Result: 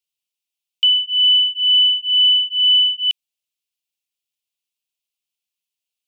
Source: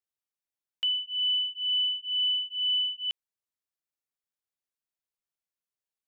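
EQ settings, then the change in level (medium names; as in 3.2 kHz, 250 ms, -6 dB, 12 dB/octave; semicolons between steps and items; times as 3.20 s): resonant high shelf 2.1 kHz +9 dB, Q 3; -2.0 dB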